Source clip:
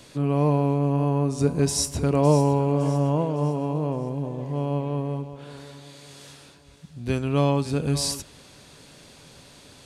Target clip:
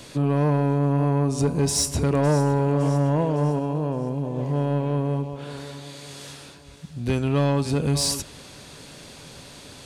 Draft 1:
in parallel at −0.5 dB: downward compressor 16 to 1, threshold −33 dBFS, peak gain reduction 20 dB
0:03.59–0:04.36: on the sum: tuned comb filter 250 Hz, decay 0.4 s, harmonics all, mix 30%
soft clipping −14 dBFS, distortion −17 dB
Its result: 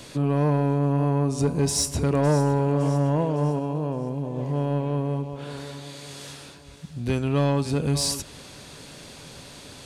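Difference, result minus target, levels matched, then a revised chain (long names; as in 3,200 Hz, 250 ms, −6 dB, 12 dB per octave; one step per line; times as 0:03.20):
downward compressor: peak gain reduction +7 dB
in parallel at −0.5 dB: downward compressor 16 to 1, threshold −25.5 dBFS, peak gain reduction 13 dB
0:03.59–0:04.36: on the sum: tuned comb filter 250 Hz, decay 0.4 s, harmonics all, mix 30%
soft clipping −14 dBFS, distortion −16 dB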